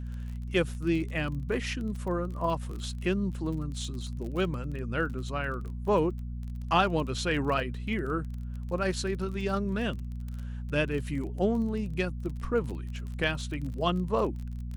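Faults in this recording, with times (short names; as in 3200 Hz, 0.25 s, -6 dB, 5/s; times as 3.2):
crackle 29/s -36 dBFS
hum 60 Hz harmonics 4 -36 dBFS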